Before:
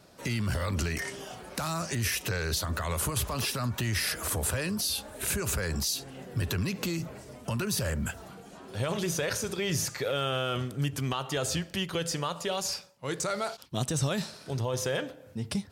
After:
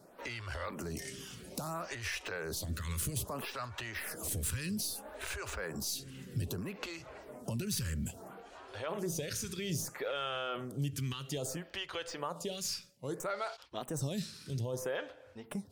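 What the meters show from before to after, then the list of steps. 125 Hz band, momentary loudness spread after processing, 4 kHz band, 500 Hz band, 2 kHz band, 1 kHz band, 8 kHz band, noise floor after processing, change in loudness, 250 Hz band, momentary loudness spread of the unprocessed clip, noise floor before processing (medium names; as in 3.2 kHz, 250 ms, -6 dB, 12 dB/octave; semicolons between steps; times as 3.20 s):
-8.0 dB, 8 LU, -8.0 dB, -6.5 dB, -7.0 dB, -6.5 dB, -7.5 dB, -57 dBFS, -7.5 dB, -7.0 dB, 7 LU, -51 dBFS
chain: tracing distortion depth 0.02 ms; compression 1.5:1, threshold -38 dBFS, peak gain reduction 5.5 dB; lamp-driven phase shifter 0.61 Hz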